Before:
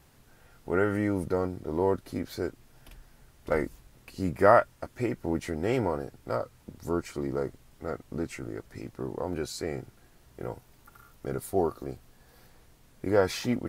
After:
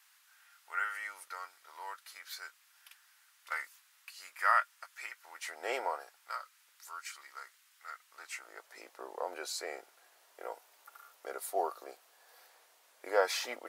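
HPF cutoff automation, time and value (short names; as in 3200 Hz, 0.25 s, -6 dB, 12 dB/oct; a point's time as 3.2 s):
HPF 24 dB/oct
5.32 s 1200 Hz
5.72 s 560 Hz
6.43 s 1300 Hz
8 s 1300 Hz
8.77 s 570 Hz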